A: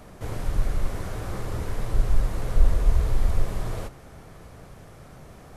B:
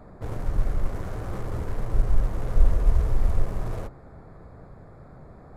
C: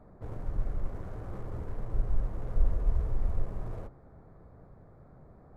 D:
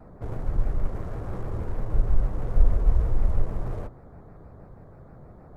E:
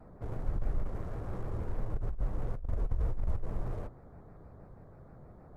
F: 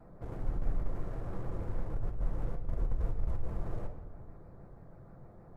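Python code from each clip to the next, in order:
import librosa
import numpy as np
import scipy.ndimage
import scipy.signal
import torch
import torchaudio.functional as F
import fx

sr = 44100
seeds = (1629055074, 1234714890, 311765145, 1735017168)

y1 = fx.wiener(x, sr, points=15)
y2 = fx.high_shelf(y1, sr, hz=2000.0, db=-10.0)
y2 = y2 * librosa.db_to_amplitude(-7.5)
y3 = fx.vibrato_shape(y2, sr, shape='square', rate_hz=6.3, depth_cents=100.0)
y3 = y3 * librosa.db_to_amplitude(7.0)
y4 = fx.over_compress(y3, sr, threshold_db=-20.0, ratio=-0.5)
y4 = y4 * librosa.db_to_amplitude(-8.0)
y5 = fx.room_shoebox(y4, sr, seeds[0], volume_m3=860.0, walls='mixed', distance_m=0.77)
y5 = y5 * librosa.db_to_amplitude(-2.0)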